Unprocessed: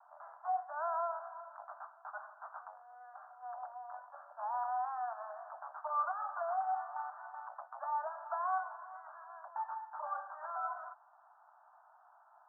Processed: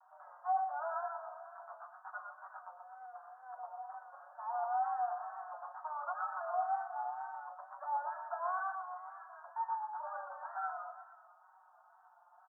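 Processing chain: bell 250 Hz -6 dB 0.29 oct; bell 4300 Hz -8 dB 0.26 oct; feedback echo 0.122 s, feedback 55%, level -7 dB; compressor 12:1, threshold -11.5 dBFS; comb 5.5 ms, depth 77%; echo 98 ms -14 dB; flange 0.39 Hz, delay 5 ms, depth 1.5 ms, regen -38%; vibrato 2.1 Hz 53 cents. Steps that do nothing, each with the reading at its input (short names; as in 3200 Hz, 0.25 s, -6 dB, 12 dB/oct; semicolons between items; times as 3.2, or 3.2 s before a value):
bell 250 Hz: input band starts at 570 Hz; bell 4300 Hz: input band ends at 1700 Hz; compressor, threshold -11.5 dBFS: input peak -23.0 dBFS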